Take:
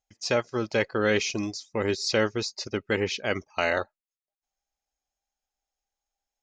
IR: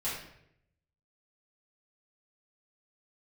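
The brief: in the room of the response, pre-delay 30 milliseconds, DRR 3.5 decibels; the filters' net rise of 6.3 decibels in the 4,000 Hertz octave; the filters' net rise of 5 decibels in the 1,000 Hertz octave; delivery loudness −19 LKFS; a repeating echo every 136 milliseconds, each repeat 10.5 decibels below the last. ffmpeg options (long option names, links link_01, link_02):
-filter_complex "[0:a]equalizer=frequency=1000:width_type=o:gain=6.5,equalizer=frequency=4000:width_type=o:gain=8,aecho=1:1:136|272|408:0.299|0.0896|0.0269,asplit=2[link_01][link_02];[1:a]atrim=start_sample=2205,adelay=30[link_03];[link_02][link_03]afir=irnorm=-1:irlink=0,volume=-8.5dB[link_04];[link_01][link_04]amix=inputs=2:normalize=0,volume=3.5dB"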